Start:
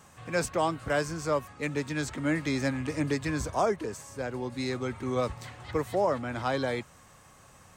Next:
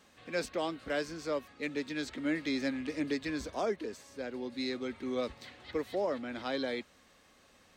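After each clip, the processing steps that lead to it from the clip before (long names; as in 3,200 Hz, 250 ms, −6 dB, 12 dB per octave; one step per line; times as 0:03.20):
octave-band graphic EQ 125/250/500/1,000/2,000/4,000/8,000 Hz −12/+8/+4/−4/+4/+10/−5 dB
level −9 dB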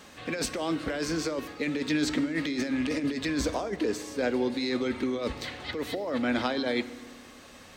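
compressor whose output falls as the input rises −38 dBFS, ratio −1
feedback delay network reverb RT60 1.5 s, low-frequency decay 1.35×, high-frequency decay 0.85×, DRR 13.5 dB
level +9 dB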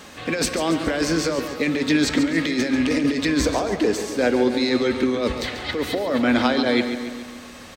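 repeating echo 140 ms, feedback 55%, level −10 dB
level +8 dB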